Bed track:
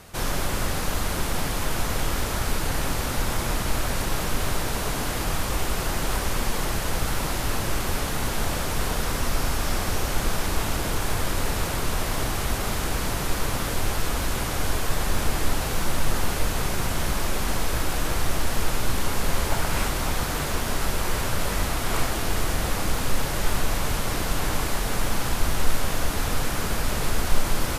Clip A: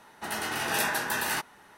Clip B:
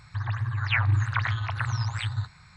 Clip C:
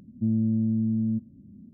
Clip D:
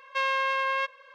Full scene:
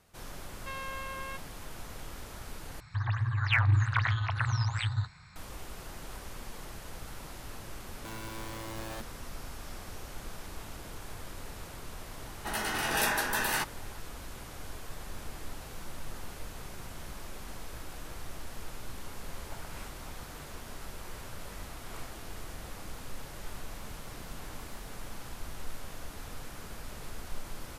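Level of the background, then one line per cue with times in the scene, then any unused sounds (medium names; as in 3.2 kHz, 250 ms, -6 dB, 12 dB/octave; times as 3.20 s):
bed track -18 dB
0.51 s: add D -14 dB
2.80 s: replace with B -1.5 dB + hard clipper -14.5 dBFS
7.83 s: add C -14 dB + integer overflow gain 24 dB
12.23 s: add A -1 dB
23.50 s: add A -12.5 dB + inverse Chebyshev band-stop 1–9 kHz, stop band 70 dB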